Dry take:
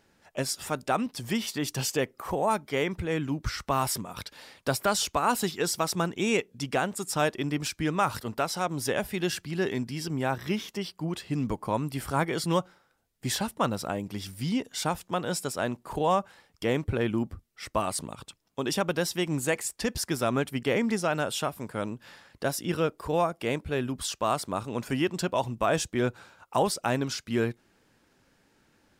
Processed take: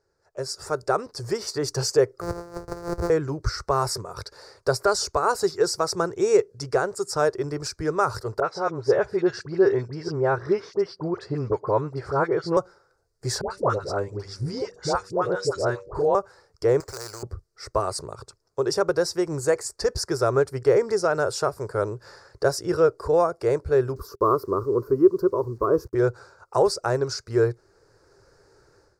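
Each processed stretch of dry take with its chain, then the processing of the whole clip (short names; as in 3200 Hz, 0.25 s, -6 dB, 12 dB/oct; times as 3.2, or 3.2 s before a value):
2.21–3.1 sample sorter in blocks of 256 samples + bell 4100 Hz -7.5 dB 2.5 oct + negative-ratio compressor -34 dBFS, ratio -0.5
8.4–12.57 BPF 110–3300 Hz + dispersion highs, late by 47 ms, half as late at 1400 Hz
13.41–16.15 air absorption 68 m + de-hum 96.1 Hz, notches 6 + dispersion highs, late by 94 ms, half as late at 820 Hz
16.8–17.23 LPF 9600 Hz + sample-rate reducer 7400 Hz + spectral compressor 4:1
23.96–25.95 EQ curve 160 Hz 0 dB, 230 Hz +8 dB, 400 Hz +9 dB, 760 Hz -14 dB, 1100 Hz +5 dB, 1700 Hz -15 dB, 3100 Hz -21 dB, 5400 Hz -16 dB, 8300 Hz -26 dB, 13000 Hz +10 dB + requantised 10-bit, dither none
whole clip: AGC gain up to 16.5 dB; EQ curve 120 Hz 0 dB, 240 Hz -20 dB, 400 Hz +6 dB, 770 Hz -5 dB, 1400 Hz -1 dB, 3200 Hz -25 dB, 4600 Hz 0 dB, 8500 Hz -7 dB, 13000 Hz -16 dB; gain -6 dB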